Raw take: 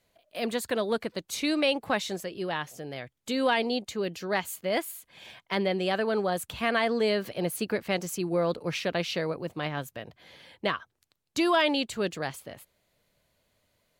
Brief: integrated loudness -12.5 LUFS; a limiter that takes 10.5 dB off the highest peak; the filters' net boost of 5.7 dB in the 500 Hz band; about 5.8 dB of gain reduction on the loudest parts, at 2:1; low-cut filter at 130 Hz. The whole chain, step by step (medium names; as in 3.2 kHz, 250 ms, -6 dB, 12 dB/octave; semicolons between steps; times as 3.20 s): high-pass 130 Hz; peaking EQ 500 Hz +7 dB; compression 2:1, threshold -27 dBFS; trim +21 dB; peak limiter -2.5 dBFS